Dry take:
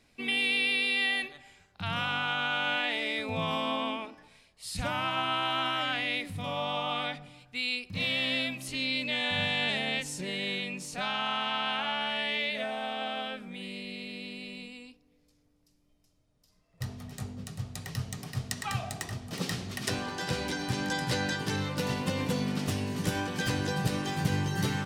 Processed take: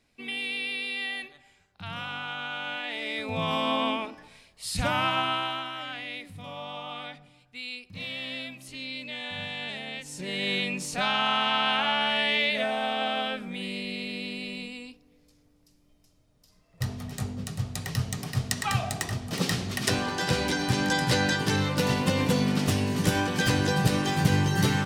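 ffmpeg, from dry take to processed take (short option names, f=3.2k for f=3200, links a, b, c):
-af "volume=17.5dB,afade=t=in:st=2.83:d=1.04:silence=0.316228,afade=t=out:st=5.04:d=0.62:silence=0.266073,afade=t=in:st=10.03:d=0.56:silence=0.251189"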